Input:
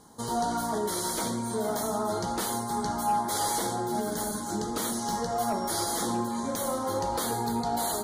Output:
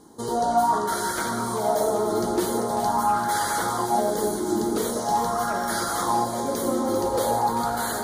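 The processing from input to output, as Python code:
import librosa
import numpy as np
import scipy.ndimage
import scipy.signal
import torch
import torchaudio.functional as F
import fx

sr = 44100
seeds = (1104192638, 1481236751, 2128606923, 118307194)

y = fx.echo_alternate(x, sr, ms=196, hz=1700.0, feedback_pct=78, wet_db=-5.0)
y = fx.bell_lfo(y, sr, hz=0.44, low_hz=330.0, high_hz=1600.0, db=12)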